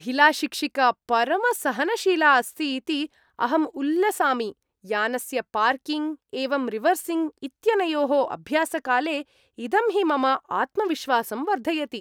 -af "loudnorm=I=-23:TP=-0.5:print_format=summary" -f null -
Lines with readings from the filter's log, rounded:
Input Integrated:    -23.8 LUFS
Input True Peak:      -4.2 dBTP
Input LRA:             2.0 LU
Input Threshold:     -34.0 LUFS